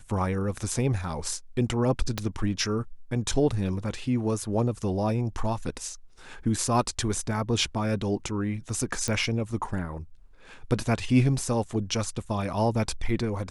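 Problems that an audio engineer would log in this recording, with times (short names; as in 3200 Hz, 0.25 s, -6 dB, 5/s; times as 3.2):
2.18 pop -12 dBFS
9.08 pop -14 dBFS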